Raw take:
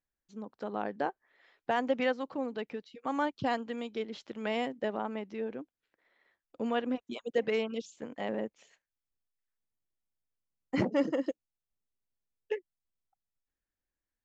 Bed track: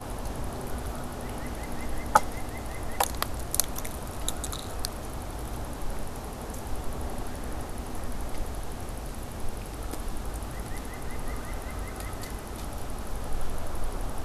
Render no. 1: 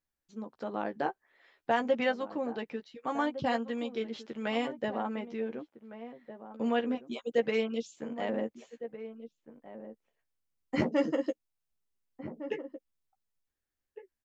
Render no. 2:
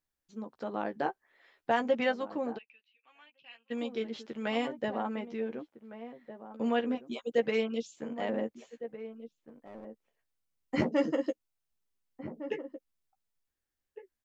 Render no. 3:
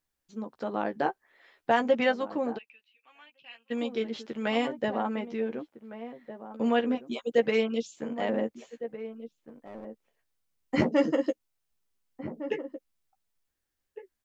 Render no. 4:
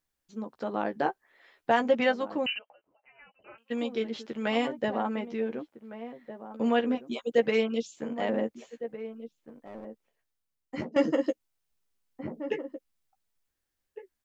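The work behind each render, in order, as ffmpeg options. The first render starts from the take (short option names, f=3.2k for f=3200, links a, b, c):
-filter_complex "[0:a]asplit=2[a][b];[b]adelay=13,volume=-6dB[c];[a][c]amix=inputs=2:normalize=0,asplit=2[d][e];[e]adelay=1458,volume=-12dB,highshelf=f=4k:g=-32.8[f];[d][f]amix=inputs=2:normalize=0"
-filter_complex "[0:a]asplit=3[a][b][c];[a]afade=t=out:st=2.57:d=0.02[d];[b]bandpass=f=2.6k:t=q:w=13,afade=t=in:st=2.57:d=0.02,afade=t=out:st=3.7:d=0.02[e];[c]afade=t=in:st=3.7:d=0.02[f];[d][e][f]amix=inputs=3:normalize=0,asettb=1/sr,asplit=3[g][h][i];[g]atrim=end=9.404[j];[h]atrim=start=9.4:end=9.85,asetpts=PTS-STARTPTS,afade=t=in:d=0.004:c=qsin,afade=t=out:st=0.446:d=0.004:c=qsin,aeval=exprs='clip(val(0),-1,0.00376)':c=same[k];[i]atrim=start=9.846[l];[j][k]acrossfade=d=0.004:c1=hsin:c2=qsin[m];[m][l]acrossfade=d=0.004:c1=qsin:c2=hsin"
-af "volume=4dB"
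-filter_complex "[0:a]asettb=1/sr,asplit=3[a][b][c];[a]atrim=end=2.464[d];[b]atrim=start=2.46:end=3.58,asetpts=PTS-STARTPTS,afade=t=in:d=0.004:c=qsin,afade=t=out:st=1.116:d=0.004:c=qsin,lowpass=f=2.7k:t=q:w=0.5098,lowpass=f=2.7k:t=q:w=0.6013,lowpass=f=2.7k:t=q:w=0.9,lowpass=f=2.7k:t=q:w=2.563,afreqshift=-3200[e];[c]atrim=start=3.576[f];[d][e]acrossfade=d=0.004:c1=hsin:c2=qsin[g];[g][f]acrossfade=d=0.004:c1=qsin:c2=hsin,asplit=2[h][i];[h]atrim=end=10.96,asetpts=PTS-STARTPTS,afade=t=out:st=9.78:d=1.18:silence=0.199526[j];[i]atrim=start=10.96,asetpts=PTS-STARTPTS,afade=t=in:d=0.004:c=hsin:silence=0.199526[k];[j][k]concat=n=2:v=0:a=1"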